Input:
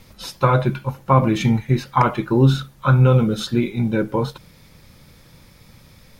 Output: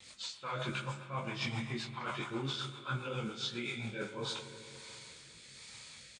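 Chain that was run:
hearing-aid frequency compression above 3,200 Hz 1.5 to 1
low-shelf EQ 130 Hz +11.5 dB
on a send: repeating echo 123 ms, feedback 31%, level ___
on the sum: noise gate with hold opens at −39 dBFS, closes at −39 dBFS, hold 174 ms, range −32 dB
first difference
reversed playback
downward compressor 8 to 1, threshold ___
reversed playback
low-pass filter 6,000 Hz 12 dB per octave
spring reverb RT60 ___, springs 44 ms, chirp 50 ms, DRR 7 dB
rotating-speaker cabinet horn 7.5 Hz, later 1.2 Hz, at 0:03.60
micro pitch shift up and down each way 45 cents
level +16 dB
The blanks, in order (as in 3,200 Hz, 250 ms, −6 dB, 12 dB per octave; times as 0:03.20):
−23 dB, −46 dBFS, 3 s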